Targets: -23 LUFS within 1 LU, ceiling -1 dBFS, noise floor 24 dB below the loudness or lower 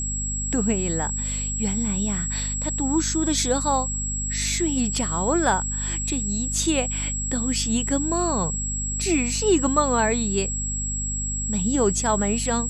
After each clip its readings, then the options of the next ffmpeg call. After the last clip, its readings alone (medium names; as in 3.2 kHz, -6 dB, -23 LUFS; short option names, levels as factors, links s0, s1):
hum 50 Hz; highest harmonic 250 Hz; hum level -27 dBFS; steady tone 7.7 kHz; tone level -27 dBFS; loudness -23.0 LUFS; peak level -7.0 dBFS; loudness target -23.0 LUFS
-> -af "bandreject=f=50:t=h:w=4,bandreject=f=100:t=h:w=4,bandreject=f=150:t=h:w=4,bandreject=f=200:t=h:w=4,bandreject=f=250:t=h:w=4"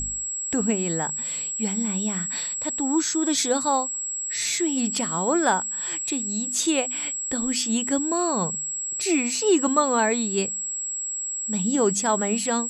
hum not found; steady tone 7.7 kHz; tone level -27 dBFS
-> -af "bandreject=f=7700:w=30"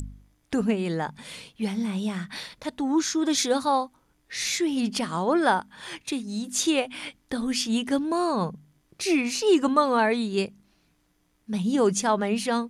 steady tone not found; loudness -25.5 LUFS; peak level -8.0 dBFS; loudness target -23.0 LUFS
-> -af "volume=1.33"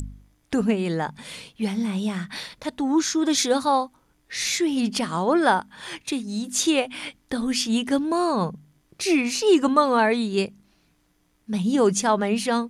loudness -23.0 LUFS; peak level -5.5 dBFS; noise floor -65 dBFS